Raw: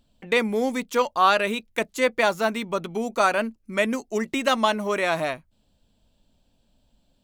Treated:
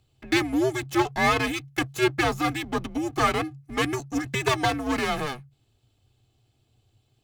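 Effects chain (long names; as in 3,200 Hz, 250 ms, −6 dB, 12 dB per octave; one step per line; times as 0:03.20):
lower of the sound and its delayed copy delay 2.2 ms
frequency shifter −140 Hz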